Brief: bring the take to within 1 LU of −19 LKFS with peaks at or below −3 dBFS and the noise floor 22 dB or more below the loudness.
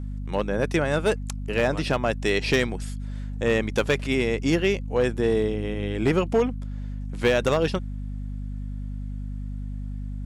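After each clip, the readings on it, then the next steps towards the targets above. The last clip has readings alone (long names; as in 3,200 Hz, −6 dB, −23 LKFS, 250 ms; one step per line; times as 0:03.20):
share of clipped samples 0.6%; peaks flattened at −14.0 dBFS; mains hum 50 Hz; hum harmonics up to 250 Hz; level of the hum −29 dBFS; integrated loudness −26.0 LKFS; sample peak −14.0 dBFS; target loudness −19.0 LKFS
→ clipped peaks rebuilt −14 dBFS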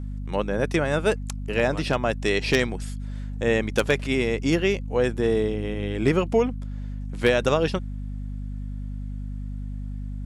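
share of clipped samples 0.0%; mains hum 50 Hz; hum harmonics up to 250 Hz; level of the hum −29 dBFS
→ mains-hum notches 50/100/150/200/250 Hz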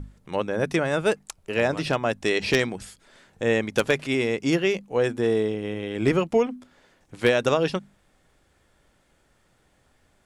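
mains hum none found; integrated loudness −24.5 LKFS; sample peak −5.0 dBFS; target loudness −19.0 LKFS
→ level +5.5 dB
brickwall limiter −3 dBFS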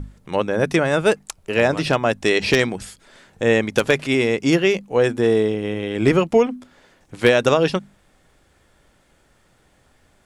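integrated loudness −19.0 LKFS; sample peak −3.0 dBFS; background noise floor −59 dBFS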